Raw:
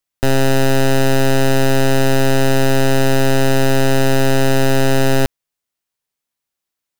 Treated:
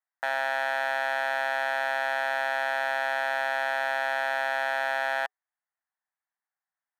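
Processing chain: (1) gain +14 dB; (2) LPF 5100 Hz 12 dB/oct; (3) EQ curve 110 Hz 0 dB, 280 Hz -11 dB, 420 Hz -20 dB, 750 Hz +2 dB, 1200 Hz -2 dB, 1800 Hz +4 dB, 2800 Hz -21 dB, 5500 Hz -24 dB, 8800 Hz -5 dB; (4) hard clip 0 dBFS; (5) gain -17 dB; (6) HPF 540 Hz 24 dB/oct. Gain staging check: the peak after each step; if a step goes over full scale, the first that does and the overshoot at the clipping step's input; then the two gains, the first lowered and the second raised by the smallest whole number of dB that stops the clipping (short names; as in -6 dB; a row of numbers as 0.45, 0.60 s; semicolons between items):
+2.5, +3.0, +5.0, 0.0, -17.0, -16.0 dBFS; step 1, 5.0 dB; step 1 +9 dB, step 5 -12 dB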